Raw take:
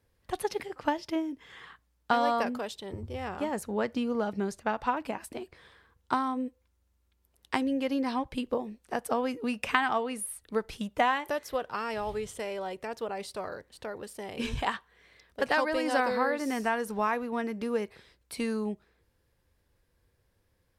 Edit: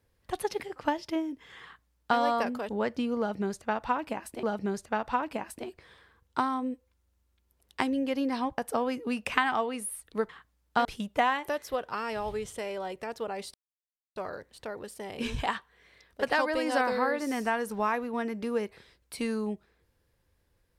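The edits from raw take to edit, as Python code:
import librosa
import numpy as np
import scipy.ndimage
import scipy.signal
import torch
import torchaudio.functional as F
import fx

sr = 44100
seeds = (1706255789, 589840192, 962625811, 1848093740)

y = fx.edit(x, sr, fx.duplicate(start_s=1.63, length_s=0.56, to_s=10.66),
    fx.cut(start_s=2.69, length_s=0.98),
    fx.repeat(start_s=4.17, length_s=1.24, count=2),
    fx.cut(start_s=8.32, length_s=0.63),
    fx.insert_silence(at_s=13.35, length_s=0.62), tone=tone)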